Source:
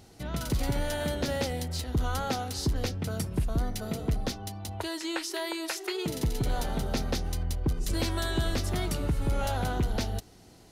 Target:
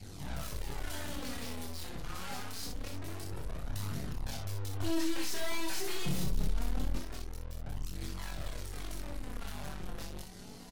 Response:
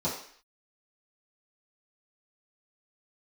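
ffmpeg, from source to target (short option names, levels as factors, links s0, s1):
-filter_complex "[0:a]asplit=2[s0][s1];[s1]adelay=21,volume=0.794[s2];[s0][s2]amix=inputs=2:normalize=0,aphaser=in_gain=1:out_gain=1:delay=1.4:decay=0.23:speed=0.6:type=triangular,alimiter=limit=0.119:level=0:latency=1:release=193,adynamicequalizer=threshold=0.00562:dfrequency=380:dqfactor=1.4:tfrequency=380:tqfactor=1.4:attack=5:release=100:ratio=0.375:range=3:mode=cutabove:tftype=bell,aeval=exprs='(tanh(251*val(0)+0.55)-tanh(0.55))/251':c=same,asettb=1/sr,asplit=3[s3][s4][s5];[s3]atrim=end=4.804[s6];[s4]atrim=start=4.8:end=6.99,asetpts=PTS-STARTPTS,afade=t=in:d=0.004:c=qsin,afade=t=out:st=2.186:d=0.004:c=qsin,lowshelf=f=250:g=9[s7];[s5]atrim=start=6.986[s8];[s6][s7]acrossfade=d=0.004:c1=hsin:c2=qsin[s9];[s9][s8]acrossfade=d=0.004:c1=qsin:c2=hsin,flanger=delay=0.4:depth=5.6:regen=22:speed=0.25:shape=triangular,aecho=1:1:28|61:0.531|0.562,aeval=exprs='0.0266*(cos(1*acos(clip(val(0)/0.0266,-1,1)))-cos(1*PI/2))+0.00188*(cos(2*acos(clip(val(0)/0.0266,-1,1)))-cos(2*PI/2))+0.00266*(cos(3*acos(clip(val(0)/0.0266,-1,1)))-cos(3*PI/2))+0.00335*(cos(4*acos(clip(val(0)/0.0266,-1,1)))-cos(4*PI/2))':c=same,volume=3.16" -ar 48000 -c:a libmp3lame -b:a 80k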